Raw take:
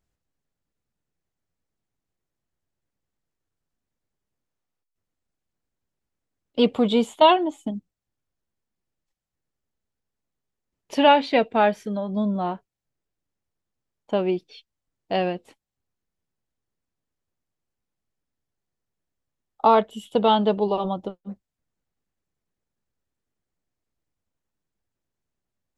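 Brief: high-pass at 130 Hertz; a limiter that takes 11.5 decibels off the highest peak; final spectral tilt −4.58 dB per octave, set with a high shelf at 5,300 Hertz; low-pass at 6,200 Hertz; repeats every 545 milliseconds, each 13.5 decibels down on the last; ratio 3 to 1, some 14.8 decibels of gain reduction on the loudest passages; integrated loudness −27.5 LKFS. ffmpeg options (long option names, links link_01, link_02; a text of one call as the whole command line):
ffmpeg -i in.wav -af "highpass=130,lowpass=6200,highshelf=frequency=5300:gain=6.5,acompressor=threshold=-31dB:ratio=3,alimiter=level_in=2.5dB:limit=-24dB:level=0:latency=1,volume=-2.5dB,aecho=1:1:545|1090:0.211|0.0444,volume=10.5dB" out.wav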